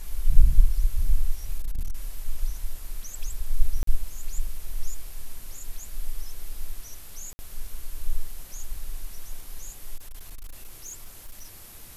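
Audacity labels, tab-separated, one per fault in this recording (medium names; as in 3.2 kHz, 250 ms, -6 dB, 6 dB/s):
1.580000	1.940000	clipped -22 dBFS
3.830000	3.870000	dropout 43 ms
7.330000	7.390000	dropout 60 ms
9.960000	11.550000	clipped -33.5 dBFS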